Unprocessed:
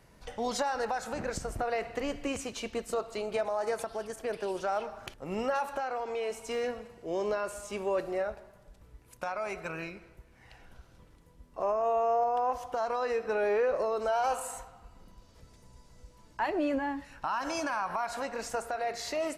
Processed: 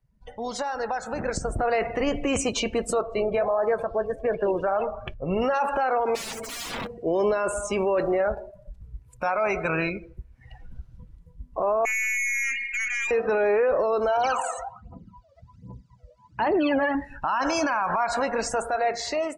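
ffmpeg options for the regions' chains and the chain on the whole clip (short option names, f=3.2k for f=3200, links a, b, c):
-filter_complex "[0:a]asettb=1/sr,asplit=3[a][b][c];[a]atrim=end=3.014[d];[b]atrim=start=3.01:end=5.42,asetpts=PTS-STARTPTS,afade=t=in:d=0.004:c=qsin,afade=t=out:st=2.406:d=0.004:c=qsin,bass=f=250:g=4,treble=f=4k:g=-9,aecho=1:1:1.8:0.32,atrim=end_sample=106281,flanger=delay=3.7:depth=8.7:regen=-74:speed=1.5:shape=sinusoidal[e];[c]atrim=start=5.416[f];[d][e]acrossfade=d=0.004:c1=hsin:c2=qsin[g];[g][f]acrossfade=d=0.004:c1=qsin:c2=hsin,asettb=1/sr,asplit=3[h][i][j];[h]atrim=end=6.154[k];[i]atrim=start=6.15:end=6.87,asetpts=PTS-STARTPTS,afade=t=in:d=0.004:c=qsin,afade=t=out:st=0.716:d=0.004:c=qsin,highpass=f=180:p=1,lowshelf=f=400:g=10,aeval=exprs='(mod(84.1*val(0)+1,2)-1)/84.1':c=same[l];[j]atrim=start=6.866[m];[k][l]acrossfade=d=0.004:c1=hsin:c2=qsin[n];[n][m]acrossfade=d=0.004:c1=qsin:c2=hsin,asettb=1/sr,asplit=3[o][p][q];[o]atrim=end=11.854[r];[p]atrim=start=11.85:end=13.11,asetpts=PTS-STARTPTS,afade=t=in:d=0.004:c=qsin,afade=t=out:st=1.256:d=0.004:c=qsin,asplit=2[s][t];[t]adelay=18,volume=-13dB[u];[s][u]amix=inputs=2:normalize=0,atrim=end_sample=55566,lowpass=f=2.5k:t=q:w=0.5098,lowpass=f=2.5k:t=q:w=0.6013,lowpass=f=2.5k:t=q:w=0.9,lowpass=f=2.5k:t=q:w=2.563,afreqshift=-2900,aeval=exprs='(tanh(89.1*val(0)+0.25)-tanh(0.25))/89.1':c=same[v];[q]atrim=start=13.106[w];[r][v]acrossfade=d=0.004:c1=hsin:c2=qsin[x];[x][w]acrossfade=d=0.004:c1=qsin:c2=hsin,asettb=1/sr,asplit=3[y][z][aa];[y]atrim=end=14.174[ab];[z]atrim=start=14.17:end=16.95,asetpts=PTS-STARTPTS,afade=t=in:d=0.004:c=qsin,afade=t=out:st=2.776:d=0.004:c=qsin,highpass=120,lowpass=5.9k,aphaser=in_gain=1:out_gain=1:delay=1.8:decay=0.74:speed=1.3:type=triangular[ac];[aa]atrim=start=16.946[ad];[ab][ac]acrossfade=d=0.004:c1=hsin:c2=qsin[ae];[ae][ad]acrossfade=d=0.004:c1=qsin:c2=hsin,afftdn=nr=24:nf=-47,dynaudnorm=f=640:g=5:m=14dB,alimiter=limit=-16dB:level=0:latency=1:release=27"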